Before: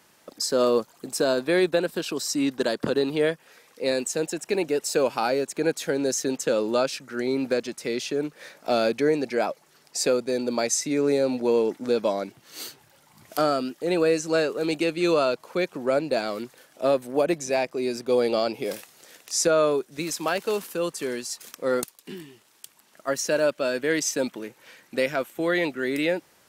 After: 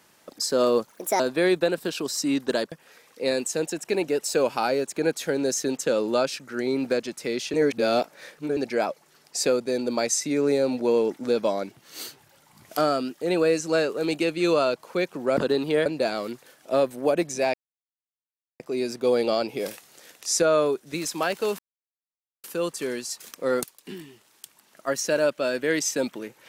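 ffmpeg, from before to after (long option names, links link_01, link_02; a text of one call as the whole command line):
ffmpeg -i in.wav -filter_complex "[0:a]asplit=10[link_01][link_02][link_03][link_04][link_05][link_06][link_07][link_08][link_09][link_10];[link_01]atrim=end=0.904[link_11];[link_02]atrim=start=0.9:end=1.31,asetpts=PTS-STARTPTS,asetrate=60858,aresample=44100,atrim=end_sample=13102,asetpts=PTS-STARTPTS[link_12];[link_03]atrim=start=1.306:end=2.832[link_13];[link_04]atrim=start=3.318:end=8.142[link_14];[link_05]atrim=start=8.138:end=9.172,asetpts=PTS-STARTPTS,areverse[link_15];[link_06]atrim=start=9.168:end=15.972[link_16];[link_07]atrim=start=2.828:end=3.322[link_17];[link_08]atrim=start=15.968:end=17.65,asetpts=PTS-STARTPTS,afade=type=out:start_time=1.678:duration=0.004:curve=hsin,apad=pad_dur=1.06[link_18];[link_09]atrim=start=17.65:end=20.64,asetpts=PTS-STARTPTS,afade=type=in:duration=0.004:curve=hsin,afade=type=out:start_time=2.986:duration=0.004:curve=hsin,apad=pad_dur=0.85[link_19];[link_10]atrim=start=20.64,asetpts=PTS-STARTPTS,afade=type=in:duration=0.004:curve=hsin[link_20];[link_11][link_12]acrossfade=duration=0.004:curve1=hsin:curve2=hsin[link_21];[link_21][link_13]acrossfade=duration=0.004:curve1=hsin:curve2=hsin[link_22];[link_22][link_14]acrossfade=duration=0.004:curve1=hsin:curve2=hsin[link_23];[link_23][link_15]acrossfade=duration=0.004:curve1=hsin:curve2=hsin[link_24];[link_24][link_16]acrossfade=duration=0.004:curve1=hsin:curve2=hsin[link_25];[link_25][link_17]acrossfade=duration=0.004:curve1=hsin:curve2=hsin[link_26];[link_18][link_19][link_20]concat=n=3:v=0:a=1[link_27];[link_26][link_27]acrossfade=duration=0.004:curve1=hsin:curve2=hsin" out.wav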